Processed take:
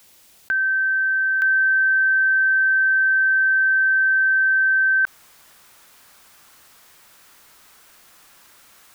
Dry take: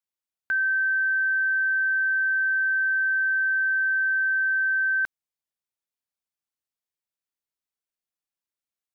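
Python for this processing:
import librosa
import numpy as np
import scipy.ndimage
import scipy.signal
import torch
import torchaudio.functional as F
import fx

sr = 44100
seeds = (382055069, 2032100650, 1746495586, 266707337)

y = fx.peak_eq(x, sr, hz=1300.0, db=fx.steps((0.0, -3.5), (1.42, 7.0)), octaves=1.3)
y = fx.env_flatten(y, sr, amount_pct=70)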